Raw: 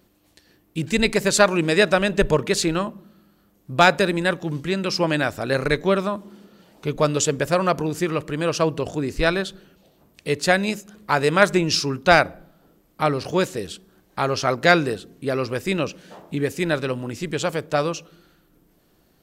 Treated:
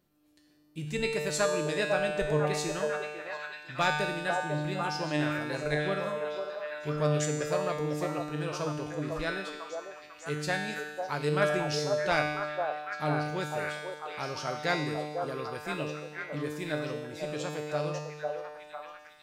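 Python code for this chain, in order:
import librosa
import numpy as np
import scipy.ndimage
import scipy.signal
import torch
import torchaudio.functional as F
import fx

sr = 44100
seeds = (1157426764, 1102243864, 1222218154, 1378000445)

y = fx.comb_fb(x, sr, f0_hz=150.0, decay_s=1.3, harmonics='all', damping=0.0, mix_pct=90)
y = fx.echo_stepped(y, sr, ms=499, hz=640.0, octaves=0.7, feedback_pct=70, wet_db=-0.5)
y = y * 10.0 ** (3.5 / 20.0)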